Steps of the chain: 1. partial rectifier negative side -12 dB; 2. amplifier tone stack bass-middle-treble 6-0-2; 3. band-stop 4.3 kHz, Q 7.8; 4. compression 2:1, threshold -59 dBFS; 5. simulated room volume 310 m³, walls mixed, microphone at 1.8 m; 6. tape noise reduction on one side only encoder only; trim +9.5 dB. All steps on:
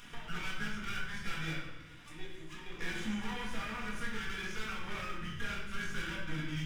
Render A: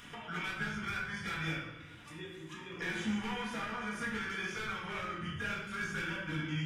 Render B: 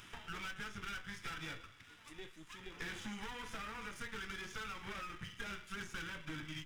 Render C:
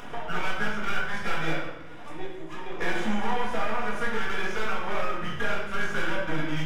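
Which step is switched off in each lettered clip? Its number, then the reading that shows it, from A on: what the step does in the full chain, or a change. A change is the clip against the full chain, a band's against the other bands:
1, distortion -4 dB; 5, crest factor change +3.5 dB; 2, 500 Hz band +9.5 dB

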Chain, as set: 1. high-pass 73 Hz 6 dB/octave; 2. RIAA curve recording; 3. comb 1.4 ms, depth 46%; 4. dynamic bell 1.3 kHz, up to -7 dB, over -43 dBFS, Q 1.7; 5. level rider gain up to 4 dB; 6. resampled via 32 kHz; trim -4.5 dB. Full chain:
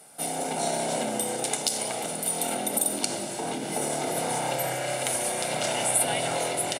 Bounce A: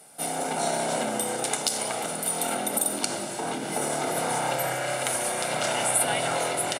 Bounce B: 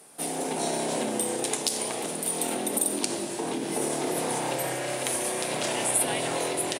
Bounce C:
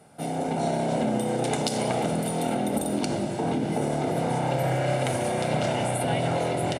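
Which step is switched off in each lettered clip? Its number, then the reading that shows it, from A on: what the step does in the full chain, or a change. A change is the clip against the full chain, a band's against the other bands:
4, 2 kHz band +2.5 dB; 3, 250 Hz band +3.5 dB; 2, 8 kHz band -13.5 dB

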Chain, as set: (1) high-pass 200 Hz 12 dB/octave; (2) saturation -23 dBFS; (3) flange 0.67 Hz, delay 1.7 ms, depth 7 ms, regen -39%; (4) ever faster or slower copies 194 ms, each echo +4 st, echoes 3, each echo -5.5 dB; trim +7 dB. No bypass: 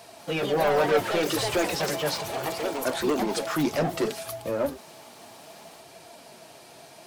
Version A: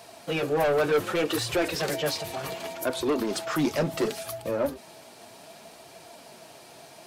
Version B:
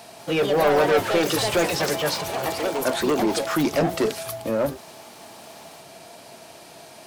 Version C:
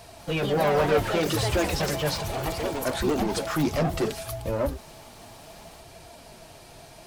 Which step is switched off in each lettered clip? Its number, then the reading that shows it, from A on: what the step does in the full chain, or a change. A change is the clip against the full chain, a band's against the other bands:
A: 4, loudness change -1.0 LU; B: 3, loudness change +4.0 LU; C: 1, 125 Hz band +7.0 dB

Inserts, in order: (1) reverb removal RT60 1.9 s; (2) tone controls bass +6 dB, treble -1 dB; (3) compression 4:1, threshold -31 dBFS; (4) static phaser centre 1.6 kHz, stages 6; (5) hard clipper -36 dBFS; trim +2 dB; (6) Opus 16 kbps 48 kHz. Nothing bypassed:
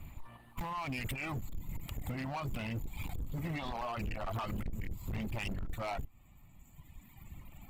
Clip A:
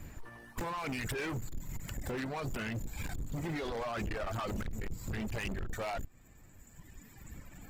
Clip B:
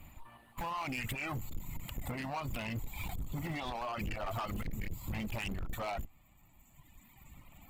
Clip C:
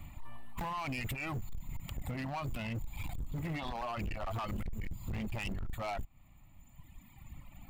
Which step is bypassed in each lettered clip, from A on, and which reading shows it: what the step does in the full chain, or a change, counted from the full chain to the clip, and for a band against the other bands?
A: 4, 8 kHz band +5.0 dB; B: 2, 125 Hz band -3.0 dB; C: 6, crest factor change -9.0 dB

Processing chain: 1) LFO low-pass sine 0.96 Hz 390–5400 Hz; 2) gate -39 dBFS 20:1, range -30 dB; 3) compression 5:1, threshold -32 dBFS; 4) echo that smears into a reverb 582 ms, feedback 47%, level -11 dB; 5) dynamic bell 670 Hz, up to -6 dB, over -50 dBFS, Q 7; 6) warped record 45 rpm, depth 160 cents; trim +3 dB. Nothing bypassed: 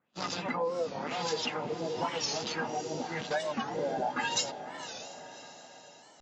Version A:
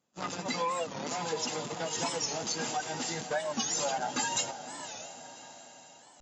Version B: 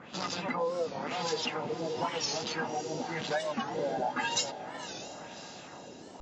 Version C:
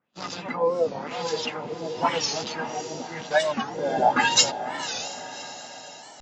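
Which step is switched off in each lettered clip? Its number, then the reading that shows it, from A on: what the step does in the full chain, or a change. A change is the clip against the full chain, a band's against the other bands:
1, 8 kHz band +7.5 dB; 2, momentary loudness spread change -3 LU; 3, loudness change +8.0 LU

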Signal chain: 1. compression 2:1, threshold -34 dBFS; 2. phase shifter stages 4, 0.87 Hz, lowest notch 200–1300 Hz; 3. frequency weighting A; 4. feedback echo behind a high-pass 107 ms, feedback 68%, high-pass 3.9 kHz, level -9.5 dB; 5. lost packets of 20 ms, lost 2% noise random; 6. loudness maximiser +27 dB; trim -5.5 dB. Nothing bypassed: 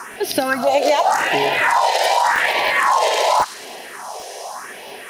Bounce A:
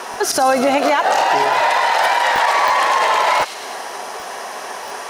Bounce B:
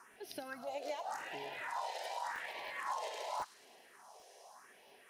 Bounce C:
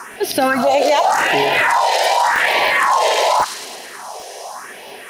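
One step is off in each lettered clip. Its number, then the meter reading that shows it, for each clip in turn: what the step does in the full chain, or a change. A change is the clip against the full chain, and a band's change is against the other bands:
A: 2, momentary loudness spread change -3 LU; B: 6, crest factor change +4.5 dB; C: 1, mean gain reduction 4.5 dB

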